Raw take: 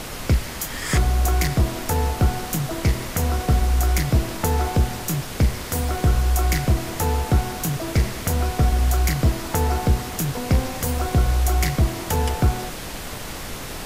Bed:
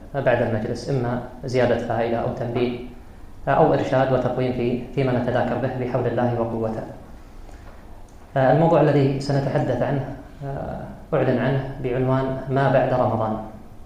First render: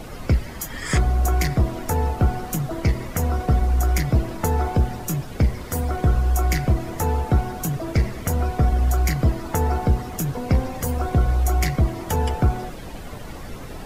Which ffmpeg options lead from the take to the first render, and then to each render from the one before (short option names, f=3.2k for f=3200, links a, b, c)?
-af "afftdn=nr=12:nf=-33"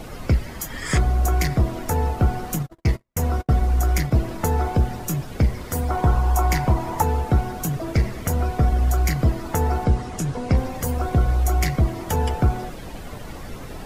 -filter_complex "[0:a]asplit=3[a][b][c];[a]afade=t=out:st=2.55:d=0.02[d];[b]agate=range=-50dB:threshold=-25dB:ratio=16:release=100:detection=peak,afade=t=in:st=2.55:d=0.02,afade=t=out:st=4.1:d=0.02[e];[c]afade=t=in:st=4.1:d=0.02[f];[d][e][f]amix=inputs=3:normalize=0,asettb=1/sr,asplit=3[g][h][i];[g]atrim=end=5.904[j];[h]atrim=start=5.9:end=7.02,asetpts=PTS-STARTPTS,afade=t=in:d=0.004:c=qsin,afade=t=out:st=1.116:d=0.004:c=qsin,equalizer=f=920:t=o:w=0.49:g=14[k];[i]atrim=start=7.016[l];[j][k]acrossfade=d=0.004:c1=hsin:c2=qsin[m];[m][l]acrossfade=d=0.004:c1=qsin:c2=hsin,asettb=1/sr,asplit=3[n][o][p];[n]atrim=end=9.844[q];[o]atrim=start=9.84:end=10.57,asetpts=PTS-STARTPTS,afade=t=in:d=0.004:c=qsin,afade=t=out:st=0.726:d=0.004:c=qsin,lowpass=f=10k:w=0.5412,lowpass=f=10k:w=1.3066[r];[p]atrim=start=10.566[s];[q][r]acrossfade=d=0.004:c1=hsin:c2=qsin[t];[t][s]acrossfade=d=0.004:c1=qsin:c2=hsin"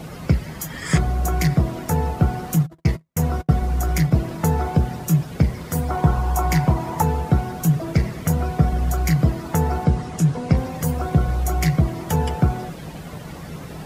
-af "highpass=60,equalizer=f=160:t=o:w=0.27:g=13"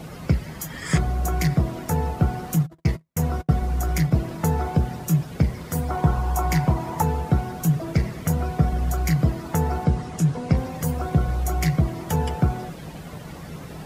-af "volume=-2.5dB"